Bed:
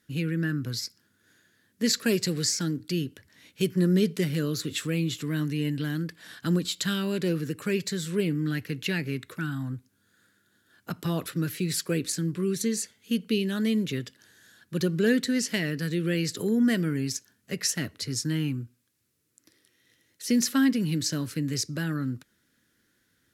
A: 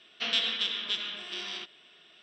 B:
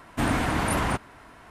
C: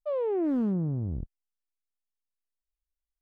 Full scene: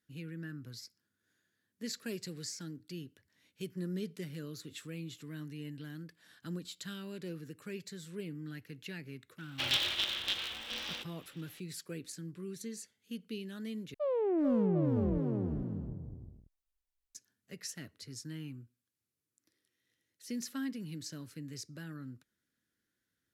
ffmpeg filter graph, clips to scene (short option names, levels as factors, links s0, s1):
-filter_complex "[0:a]volume=0.168[s0];[1:a]aeval=exprs='val(0)*sgn(sin(2*PI*130*n/s))':c=same[s1];[3:a]aecho=1:1:440|748|963.6|1115|1220|1294:0.631|0.398|0.251|0.158|0.1|0.0631[s2];[s0]asplit=2[s3][s4];[s3]atrim=end=13.944[s5];[s2]atrim=end=3.21,asetpts=PTS-STARTPTS,volume=0.708[s6];[s4]atrim=start=17.146[s7];[s1]atrim=end=2.22,asetpts=PTS-STARTPTS,volume=0.708,afade=t=in:d=0.004:c=hsin,afade=t=out:st=2.216:d=0.004:c=hsin,adelay=413658S[s8];[s5][s6]acrossfade=d=0.004:c1=hsin:c2=hsin[s9];[s9][s7]acrossfade=d=0.004:c1=hsin:c2=hsin[s10];[s10][s8]amix=inputs=2:normalize=0"